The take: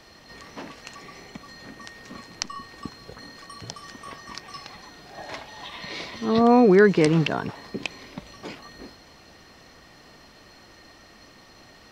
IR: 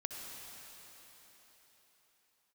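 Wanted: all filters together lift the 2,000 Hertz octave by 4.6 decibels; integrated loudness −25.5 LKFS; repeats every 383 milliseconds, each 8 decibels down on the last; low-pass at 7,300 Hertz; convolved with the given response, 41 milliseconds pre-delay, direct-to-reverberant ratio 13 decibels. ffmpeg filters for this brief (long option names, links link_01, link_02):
-filter_complex "[0:a]lowpass=7300,equalizer=frequency=2000:width_type=o:gain=6,aecho=1:1:383|766|1149|1532|1915:0.398|0.159|0.0637|0.0255|0.0102,asplit=2[link_01][link_02];[1:a]atrim=start_sample=2205,adelay=41[link_03];[link_02][link_03]afir=irnorm=-1:irlink=0,volume=-13dB[link_04];[link_01][link_04]amix=inputs=2:normalize=0,volume=-4dB"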